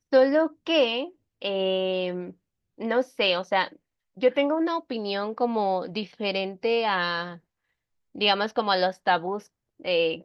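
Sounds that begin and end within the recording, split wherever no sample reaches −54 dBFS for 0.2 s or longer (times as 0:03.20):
0:01.41–0:02.34
0:02.78–0:03.76
0:04.17–0:07.40
0:08.15–0:09.47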